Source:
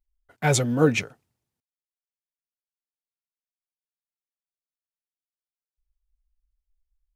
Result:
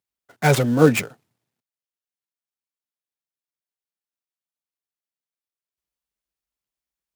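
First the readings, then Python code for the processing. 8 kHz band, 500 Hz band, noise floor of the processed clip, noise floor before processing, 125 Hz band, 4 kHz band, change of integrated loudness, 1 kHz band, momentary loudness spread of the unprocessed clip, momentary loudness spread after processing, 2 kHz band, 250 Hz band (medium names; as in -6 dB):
-1.5 dB, +5.0 dB, under -85 dBFS, under -85 dBFS, +4.0 dB, +1.5 dB, +4.5 dB, +5.0 dB, 10 LU, 11 LU, +3.5 dB, +5.0 dB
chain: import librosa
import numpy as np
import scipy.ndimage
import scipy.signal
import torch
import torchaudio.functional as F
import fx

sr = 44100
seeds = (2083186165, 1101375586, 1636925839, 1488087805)

y = fx.dead_time(x, sr, dead_ms=0.085)
y = scipy.signal.sosfilt(scipy.signal.butter(4, 110.0, 'highpass', fs=sr, output='sos'), y)
y = F.gain(torch.from_numpy(y), 5.0).numpy()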